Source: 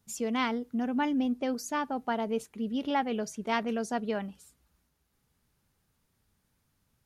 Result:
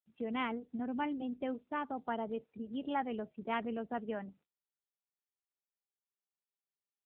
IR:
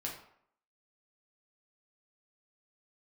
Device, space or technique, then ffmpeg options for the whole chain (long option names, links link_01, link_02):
mobile call with aggressive noise cancelling: -filter_complex "[0:a]asettb=1/sr,asplit=3[link_01][link_02][link_03];[link_01]atrim=end=0.504[link_04];[link_02]atrim=start=0.5:end=1.66,asetpts=PTS-STARTPTS,afade=type=in:duration=0.004:curve=qsin,afade=type=out:start_time=1.156:duration=0.004:curve=qsin,lowpass=frequency=7500:width=0.5412,lowpass=frequency=7500:width=1.3066[link_05];[link_03]atrim=start=1.656[link_06];[link_04][link_05]acrossfade=duration=0.004:curve1=hsin:curve2=qsin[link_07];[link_07][link_06]acrossfade=duration=0.004:curve1=qsin:curve2=hsin,highpass=140,afftdn=noise_reduction=34:noise_floor=-48,volume=-5.5dB" -ar 8000 -c:a libopencore_amrnb -b:a 7950